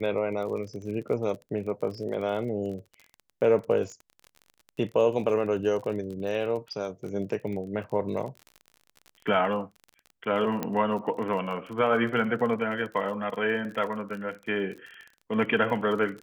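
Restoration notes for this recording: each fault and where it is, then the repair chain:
crackle 31 per s -36 dBFS
10.63 s: pop -15 dBFS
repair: de-click

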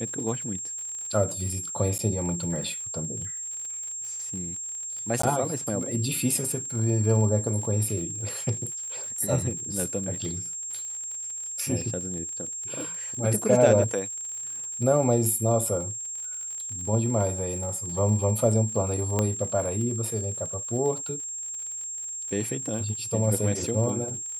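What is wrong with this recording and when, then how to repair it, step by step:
crackle 55 per s -35 dBFS
whine 7.5 kHz -32 dBFS
1.98–1.99 s: dropout 9.1 ms
5.22–5.23 s: dropout 14 ms
19.19 s: pop -11 dBFS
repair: de-click; band-stop 7.5 kHz, Q 30; interpolate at 1.98 s, 9.1 ms; interpolate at 5.22 s, 14 ms

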